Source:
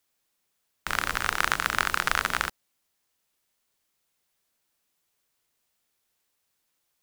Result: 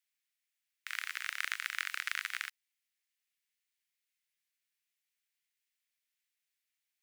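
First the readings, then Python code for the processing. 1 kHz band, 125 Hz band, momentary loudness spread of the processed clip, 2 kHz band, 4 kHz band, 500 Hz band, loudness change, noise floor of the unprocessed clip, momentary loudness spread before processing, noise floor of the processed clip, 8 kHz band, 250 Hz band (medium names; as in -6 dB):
-19.0 dB, under -40 dB, 6 LU, -9.5 dB, -9.0 dB, under -40 dB, -10.5 dB, -77 dBFS, 6 LU, under -85 dBFS, -11.5 dB, under -40 dB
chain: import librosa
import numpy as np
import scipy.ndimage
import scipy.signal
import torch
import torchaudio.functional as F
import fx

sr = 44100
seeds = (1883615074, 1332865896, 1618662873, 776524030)

y = fx.ladder_highpass(x, sr, hz=1700.0, resonance_pct=45)
y = y * librosa.db_to_amplitude(-3.0)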